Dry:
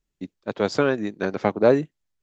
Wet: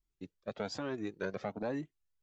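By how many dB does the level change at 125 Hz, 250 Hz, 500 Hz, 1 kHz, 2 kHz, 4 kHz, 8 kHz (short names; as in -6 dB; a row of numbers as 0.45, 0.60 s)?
-14.5 dB, -14.5 dB, -18.0 dB, -16.0 dB, -14.5 dB, -11.0 dB, n/a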